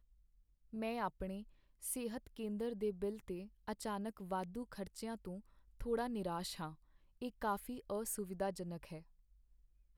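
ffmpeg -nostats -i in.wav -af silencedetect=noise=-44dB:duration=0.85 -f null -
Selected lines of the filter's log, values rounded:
silence_start: 8.98
silence_end: 9.97 | silence_duration: 0.99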